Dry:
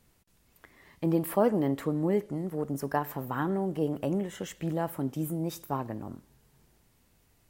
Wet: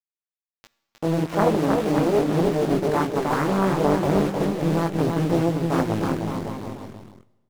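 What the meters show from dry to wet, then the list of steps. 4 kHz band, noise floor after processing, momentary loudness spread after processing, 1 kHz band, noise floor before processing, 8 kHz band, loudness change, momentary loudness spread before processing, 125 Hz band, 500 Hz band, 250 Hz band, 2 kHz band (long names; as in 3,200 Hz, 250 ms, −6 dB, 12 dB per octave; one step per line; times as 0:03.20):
+13.0 dB, below −85 dBFS, 9 LU, +10.0 dB, −67 dBFS, +6.5 dB, +8.5 dB, 9 LU, +9.5 dB, +9.0 dB, +8.5 dB, +11.0 dB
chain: low-pass filter 1,300 Hz 12 dB per octave
in parallel at −1 dB: compressor whose output falls as the input rises −32 dBFS, ratio −0.5
on the sum: centre clipping without the shift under −31.5 dBFS
multi-voice chorus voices 2, 0.39 Hz, delay 19 ms, depth 1.8 ms
on a send: bouncing-ball delay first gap 310 ms, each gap 0.8×, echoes 5
on the sum: four-comb reverb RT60 1.2 s, combs from 27 ms, DRR 18 dB
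highs frequency-modulated by the lows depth 0.77 ms
level +7 dB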